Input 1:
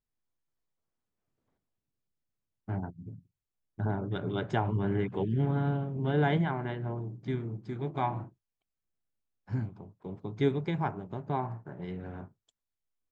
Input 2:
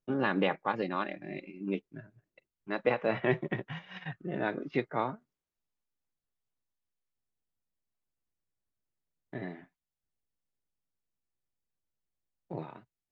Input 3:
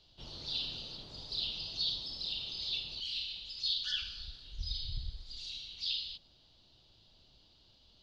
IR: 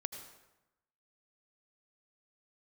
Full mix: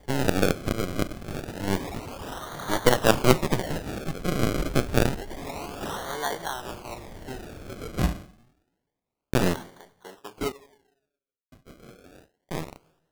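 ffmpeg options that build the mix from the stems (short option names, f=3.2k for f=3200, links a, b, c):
-filter_complex "[0:a]highpass=770,volume=-4.5dB,asplit=3[a][b][c];[a]atrim=end=10.52,asetpts=PTS-STARTPTS,afade=t=out:st=10.516:d=0.004:c=hsin[d];[b]atrim=start=10.52:end=11.52,asetpts=PTS-STARTPTS,volume=0[e];[c]atrim=start=11.52,asetpts=PTS-STARTPTS,afade=t=in:d=0.004:c=hsin[f];[d][e][f]concat=n=3:v=0:a=1,asplit=2[g][h];[h]volume=-12dB[i];[1:a]acrusher=bits=4:dc=4:mix=0:aa=0.000001,acontrast=44,highshelf=f=3.2k:g=-12,volume=1dB,asplit=2[j][k];[k]volume=-14dB[l];[2:a]aeval=exprs='0.0944*(cos(1*acos(clip(val(0)/0.0944,-1,1)))-cos(1*PI/2))+0.0376*(cos(5*acos(clip(val(0)/0.0944,-1,1)))-cos(5*PI/2))':c=same,acompressor=threshold=-50dB:ratio=2,equalizer=f=1.2k:w=0.54:g=-5.5,volume=0dB,asplit=2[m][n];[n]volume=-4dB[o];[3:a]atrim=start_sample=2205[p];[i][l][o]amix=inputs=3:normalize=0[q];[q][p]afir=irnorm=-1:irlink=0[r];[g][j][m][r]amix=inputs=4:normalize=0,dynaudnorm=f=200:g=17:m=12.5dB,acrusher=samples=33:mix=1:aa=0.000001:lfo=1:lforange=33:lforate=0.28"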